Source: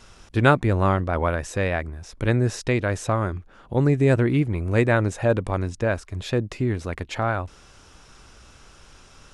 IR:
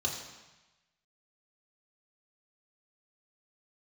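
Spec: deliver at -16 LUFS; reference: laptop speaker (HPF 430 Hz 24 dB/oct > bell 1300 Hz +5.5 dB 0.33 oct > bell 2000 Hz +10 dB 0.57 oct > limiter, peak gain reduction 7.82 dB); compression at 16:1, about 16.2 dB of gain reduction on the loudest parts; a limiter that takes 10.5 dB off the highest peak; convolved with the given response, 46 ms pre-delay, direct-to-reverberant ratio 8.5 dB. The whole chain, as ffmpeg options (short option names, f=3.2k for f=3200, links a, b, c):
-filter_complex "[0:a]acompressor=threshold=-27dB:ratio=16,alimiter=level_in=2.5dB:limit=-24dB:level=0:latency=1,volume=-2.5dB,asplit=2[a][b];[1:a]atrim=start_sample=2205,adelay=46[c];[b][c]afir=irnorm=-1:irlink=0,volume=-13.5dB[d];[a][d]amix=inputs=2:normalize=0,highpass=f=430:w=0.5412,highpass=f=430:w=1.3066,equalizer=f=1.3k:t=o:w=0.33:g=5.5,equalizer=f=2k:t=o:w=0.57:g=10,volume=25dB,alimiter=limit=-3.5dB:level=0:latency=1"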